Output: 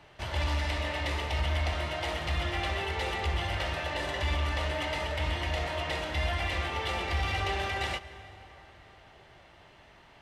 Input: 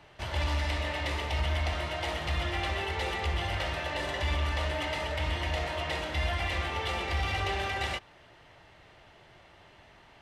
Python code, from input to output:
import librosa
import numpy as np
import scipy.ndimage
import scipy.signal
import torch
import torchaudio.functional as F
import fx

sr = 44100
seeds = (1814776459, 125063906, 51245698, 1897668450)

y = fx.rev_plate(x, sr, seeds[0], rt60_s=4.4, hf_ratio=0.55, predelay_ms=115, drr_db=15.5)